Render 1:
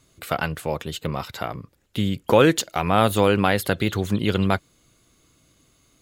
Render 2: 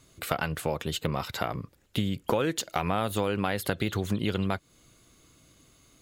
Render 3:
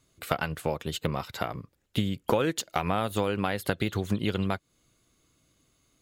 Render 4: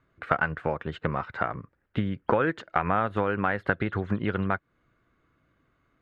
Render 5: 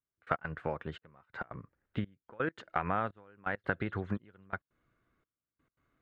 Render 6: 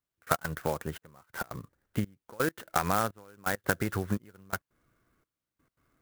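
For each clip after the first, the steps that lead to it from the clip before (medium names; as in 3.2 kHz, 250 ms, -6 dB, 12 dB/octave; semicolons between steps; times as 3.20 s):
compression 6:1, threshold -25 dBFS, peak gain reduction 14 dB; trim +1 dB
upward expansion 1.5:1, over -45 dBFS; trim +2.5 dB
resonant low-pass 1.6 kHz, resonance Q 2.5
trance gate "...x.xxxxxx." 169 bpm -24 dB; trim -7 dB
sampling jitter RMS 0.049 ms; trim +4.5 dB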